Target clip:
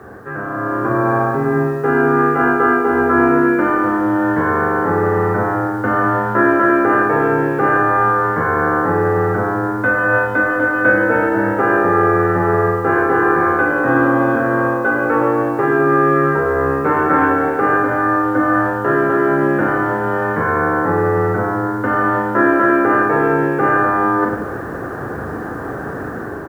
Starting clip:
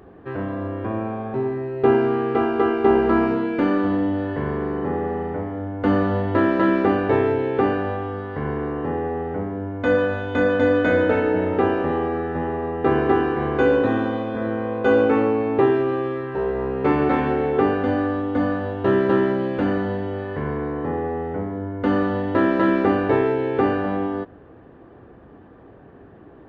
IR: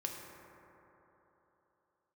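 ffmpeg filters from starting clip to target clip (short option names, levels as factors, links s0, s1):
-filter_complex "[0:a]areverse,acompressor=threshold=0.02:ratio=6,areverse,lowpass=f=1500:t=q:w=4.1,afreqshift=17,asplit=2[s0][s1];[s1]aecho=0:1:40|100|190|325|527.5:0.631|0.398|0.251|0.158|0.1[s2];[s0][s2]amix=inputs=2:normalize=0,acrusher=bits=10:mix=0:aa=0.000001,dynaudnorm=f=110:g=13:m=3.16,volume=2.24"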